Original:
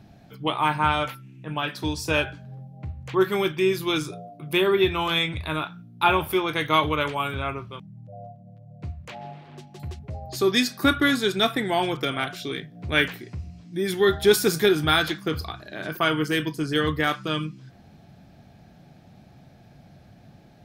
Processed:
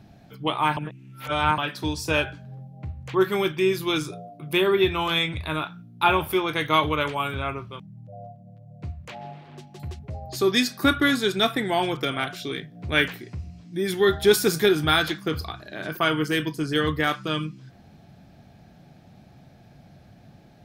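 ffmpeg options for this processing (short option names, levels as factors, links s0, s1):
-filter_complex "[0:a]asplit=3[s0][s1][s2];[s0]atrim=end=0.772[s3];[s1]atrim=start=0.768:end=1.582,asetpts=PTS-STARTPTS,areverse[s4];[s2]atrim=start=1.578[s5];[s3][s4]acrossfade=d=0.004:c1=hsin:c2=hsin[s6];[s6][s5]acrossfade=d=0.004:c1=hsin:c2=hsin"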